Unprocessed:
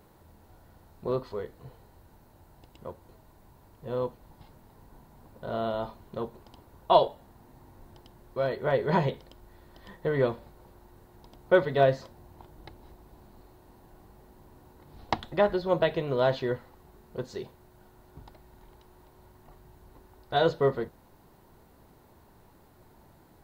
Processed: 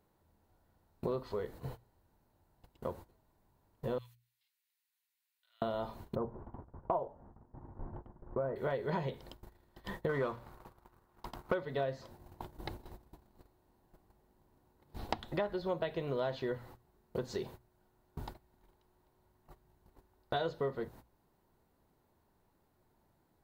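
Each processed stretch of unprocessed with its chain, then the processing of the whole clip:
3.98–5.62 s: dynamic bell 3.2 kHz, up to -4 dB, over -52 dBFS, Q 1.1 + Chebyshev high-pass 2.3 kHz, order 3
6.15–8.56 s: low-pass 1.4 kHz 24 dB/octave + bass shelf 210 Hz +3.5 dB
10.09–11.54 s: peaking EQ 1.2 kHz +10 dB 0.83 oct + waveshaping leveller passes 1
whole clip: gate -49 dBFS, range -22 dB; hum notches 60/120 Hz; compression 5:1, threshold -41 dBFS; trim +6.5 dB

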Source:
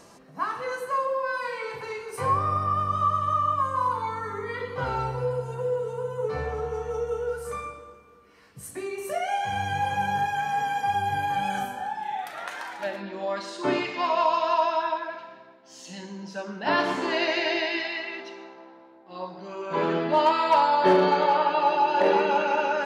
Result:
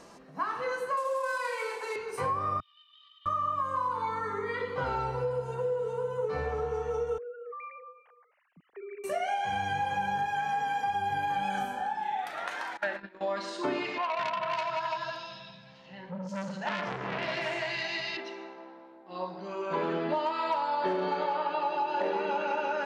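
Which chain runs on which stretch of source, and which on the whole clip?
0.97–1.96 s: CVSD coder 64 kbps + high-pass 350 Hz 24 dB/octave + peaking EQ 8.2 kHz +7 dB 0.83 oct
2.60–3.26 s: Butterworth band-pass 3.3 kHz, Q 5.2 + loudspeaker Doppler distortion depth 0.2 ms
7.18–9.04 s: formants replaced by sine waves + compression, threshold -39 dBFS
12.77–13.21 s: peaking EQ 1.6 kHz +10 dB 0.99 oct + gate -32 dBFS, range -22 dB
13.98–18.17 s: resonant low shelf 210 Hz +11 dB, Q 3 + three bands offset in time mids, lows, highs 210/570 ms, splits 310/2900 Hz + transformer saturation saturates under 2.5 kHz
whole clip: peaking EQ 110 Hz -8 dB 0.51 oct; compression, threshold -27 dBFS; treble shelf 8.7 kHz -10.5 dB

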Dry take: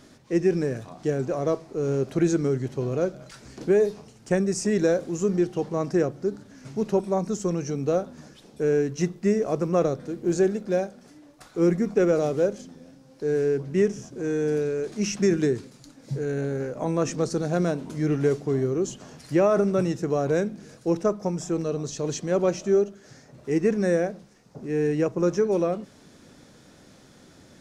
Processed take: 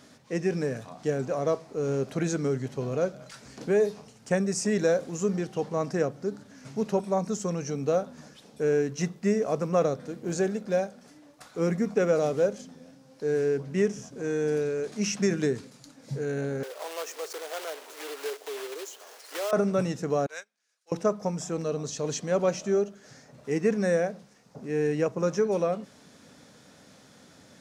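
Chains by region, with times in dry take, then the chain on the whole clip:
16.63–19.53 s: block-companded coder 3-bit + elliptic high-pass 380 Hz, stop band 60 dB + compression 1.5:1, threshold -43 dBFS
20.26–20.92 s: high-pass 1.5 kHz + upward expansion 2.5:1, over -50 dBFS
whole clip: high-pass 160 Hz 6 dB/octave; peaking EQ 350 Hz -10.5 dB 0.25 oct

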